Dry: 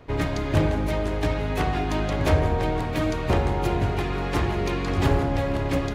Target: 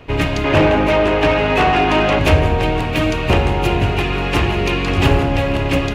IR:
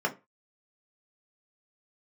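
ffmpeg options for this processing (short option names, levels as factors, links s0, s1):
-filter_complex "[0:a]equalizer=f=2700:w=3.3:g=11,asettb=1/sr,asplit=3[s0][s1][s2];[s0]atrim=end=0.444[s3];[s1]atrim=start=0.44:end=2.19,asetpts=PTS-STARTPTS,afade=t=in:d=0.004:c=qsin,afade=t=out:st=1.746:d=0.004:c=qsin,asplit=2[s4][s5];[s5]highpass=f=720:p=1,volume=8.91,asoftclip=type=tanh:threshold=0.376[s6];[s4][s6]amix=inputs=2:normalize=0,lowpass=f=1100:p=1,volume=0.501[s7];[s2]atrim=start=2.186[s8];[s3][s7]acrossfade=d=0.004:c1=hsin:c2=qsin[s9];[s9][s8]acrossfade=d=0.004:c1=qsin:c2=hsin,volume=2.24"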